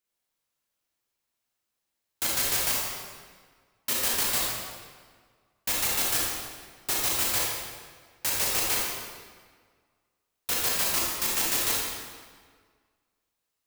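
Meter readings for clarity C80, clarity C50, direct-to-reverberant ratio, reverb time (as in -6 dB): 1.0 dB, -1.5 dB, -4.5 dB, 1.7 s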